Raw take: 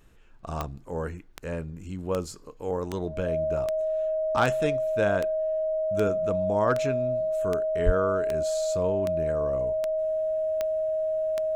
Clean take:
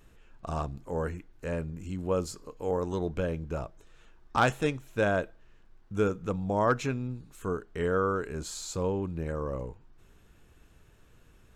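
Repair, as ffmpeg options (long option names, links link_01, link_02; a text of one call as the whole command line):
ffmpeg -i in.wav -filter_complex "[0:a]adeclick=threshold=4,bandreject=frequency=630:width=30,asplit=3[link_01][link_02][link_03];[link_01]afade=type=out:start_time=7.85:duration=0.02[link_04];[link_02]highpass=frequency=140:width=0.5412,highpass=frequency=140:width=1.3066,afade=type=in:start_time=7.85:duration=0.02,afade=type=out:start_time=7.97:duration=0.02[link_05];[link_03]afade=type=in:start_time=7.97:duration=0.02[link_06];[link_04][link_05][link_06]amix=inputs=3:normalize=0" out.wav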